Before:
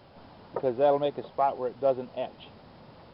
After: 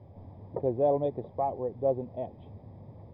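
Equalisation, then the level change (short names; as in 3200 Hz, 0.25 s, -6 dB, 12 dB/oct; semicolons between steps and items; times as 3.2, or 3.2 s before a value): running mean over 31 samples; bell 96 Hz +14 dB 0.71 oct; 0.0 dB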